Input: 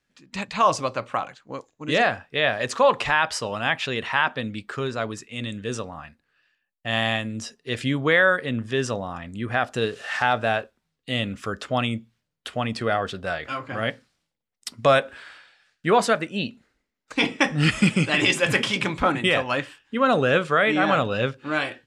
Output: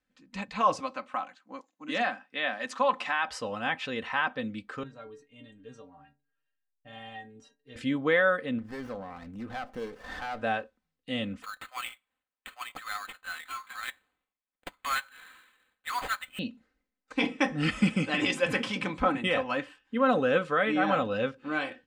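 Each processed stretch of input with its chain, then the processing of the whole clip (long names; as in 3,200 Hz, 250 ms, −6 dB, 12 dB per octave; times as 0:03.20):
0:00.80–0:03.28: high-pass filter 210 Hz 24 dB per octave + parametric band 440 Hz −12.5 dB 0.61 octaves
0:04.83–0:07.76: spectral tilt −1.5 dB per octave + stiff-string resonator 140 Hz, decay 0.29 s, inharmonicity 0.008
0:08.58–0:10.42: running median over 5 samples + downward compressor 1.5 to 1, threshold −33 dBFS + windowed peak hold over 9 samples
0:11.42–0:16.39: Butterworth high-pass 1,000 Hz + sample-rate reduction 5,600 Hz
whole clip: high-shelf EQ 3,400 Hz −8 dB; comb filter 3.9 ms, depth 57%; level −6.5 dB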